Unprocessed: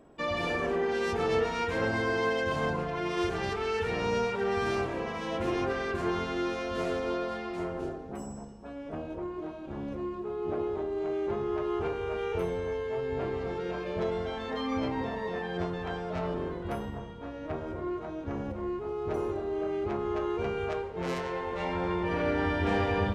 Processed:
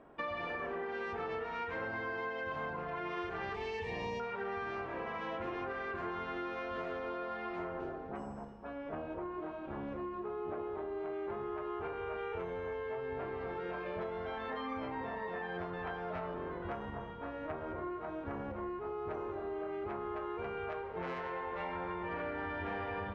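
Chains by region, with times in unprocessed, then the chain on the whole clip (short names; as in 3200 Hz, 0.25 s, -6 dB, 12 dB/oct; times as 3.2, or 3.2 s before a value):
3.54–4.2 Butterworth band-stop 1400 Hz, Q 2.6 + tone controls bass +5 dB, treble +13 dB
whole clip: LPF 1500 Hz 12 dB/oct; tilt shelf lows -8 dB, about 870 Hz; compressor, threshold -39 dBFS; gain +2.5 dB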